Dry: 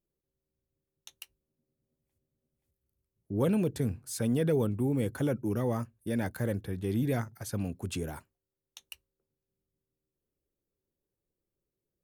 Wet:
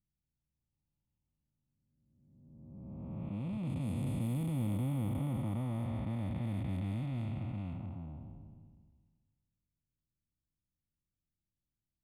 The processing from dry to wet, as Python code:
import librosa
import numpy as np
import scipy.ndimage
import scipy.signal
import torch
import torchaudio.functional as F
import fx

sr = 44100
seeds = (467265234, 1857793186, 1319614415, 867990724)

y = fx.spec_blur(x, sr, span_ms=1140.0)
y = fx.dereverb_blind(y, sr, rt60_s=0.6)
y = fx.env_lowpass(y, sr, base_hz=310.0, full_db=-31.0)
y = fx.fixed_phaser(y, sr, hz=1600.0, stages=6)
y = y * librosa.db_to_amplitude(4.0)